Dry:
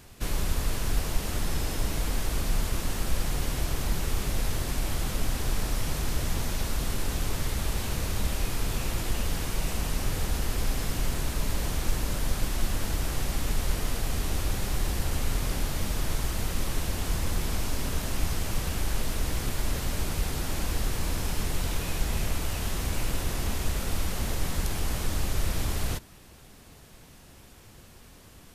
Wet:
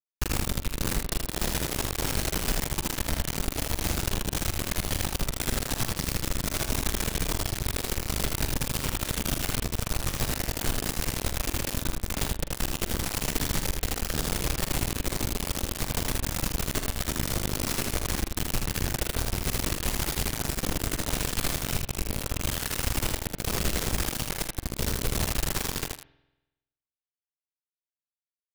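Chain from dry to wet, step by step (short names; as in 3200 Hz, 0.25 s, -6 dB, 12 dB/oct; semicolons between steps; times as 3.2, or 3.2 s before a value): compressor 12:1, threshold -29 dBFS, peak gain reduction 12.5 dB; rotary speaker horn 7.5 Hz, later 0.75 Hz, at 18.86; bit-crush 5-bit; on a send: early reflections 44 ms -11 dB, 79 ms -4 dB; on the sum: spring tank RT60 1 s, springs 47 ms, chirp 65 ms, DRR 17.5 dB; gain +3.5 dB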